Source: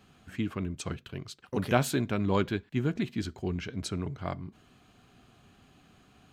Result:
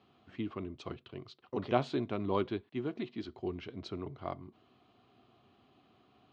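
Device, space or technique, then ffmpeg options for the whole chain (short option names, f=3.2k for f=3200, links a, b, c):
guitar cabinet: -filter_complex "[0:a]highpass=110,equalizer=f=170:t=q:w=4:g=-8,equalizer=f=360:t=q:w=4:g=5,equalizer=f=690:t=q:w=4:g=4,equalizer=f=1.1k:t=q:w=4:g=4,equalizer=f=1.6k:t=q:w=4:g=-8,equalizer=f=2.4k:t=q:w=4:g=-3,lowpass=f=4.3k:w=0.5412,lowpass=f=4.3k:w=1.3066,asettb=1/sr,asplit=3[a][b][c];[a]atrim=end=2.684[d];[b]atrim=start=2.68:end=3.29,asetpts=PTS-STARTPTS,afade=t=in:d=0.004:c=qsin,afade=t=out:st=0.606:d=0.004:c=qsin,highpass=f=180:p=1[e];[c]atrim=start=3.286[f];[d][e]acrossfade=d=0.004:c1=hsin:c2=qsin[g];[g][f]acrossfade=d=0.004:c1=qsin:c2=hsin,volume=-5.5dB"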